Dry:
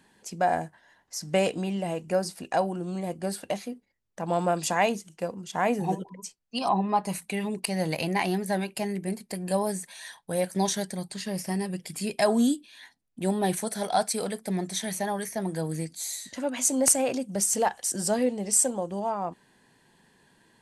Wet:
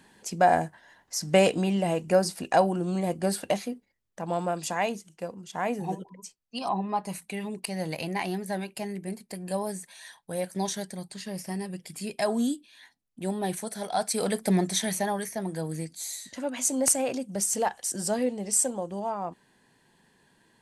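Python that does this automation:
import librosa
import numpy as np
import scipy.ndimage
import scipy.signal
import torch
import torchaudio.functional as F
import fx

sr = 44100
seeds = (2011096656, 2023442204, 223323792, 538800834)

y = fx.gain(x, sr, db=fx.line((3.48, 4.0), (4.51, -4.0), (13.94, -4.0), (14.41, 7.0), (15.43, -2.0)))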